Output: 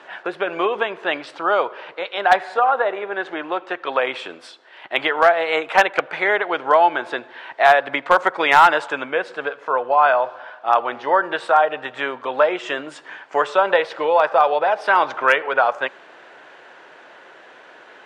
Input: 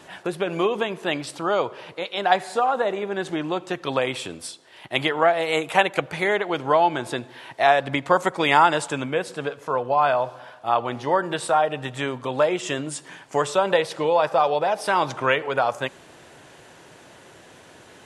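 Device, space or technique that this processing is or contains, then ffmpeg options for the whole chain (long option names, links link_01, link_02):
megaphone: -filter_complex "[0:a]highpass=460,lowpass=2900,equalizer=frequency=1500:width_type=o:width=0.49:gain=4.5,asoftclip=type=hard:threshold=-8.5dB,asettb=1/sr,asplit=3[link_01][link_02][link_03];[link_01]atrim=end=2.544[link_04];[link_02]atrim=start=2.54:end=4.03,asetpts=PTS-STARTPTS,afade=type=in:duration=0.004:curve=qsin,afade=type=out:start_time=1.486:duration=0.004:curve=qsin,bass=frequency=250:gain=-6,treble=frequency=4000:gain=-5[link_05];[link_03]atrim=start=4.026[link_06];[link_04][link_05]acrossfade=duration=0.004:curve1=hsin:curve2=qsin[link_07];[link_07][link_06]acrossfade=duration=0.004:curve1=qsin:curve2=hsin,volume=4.5dB"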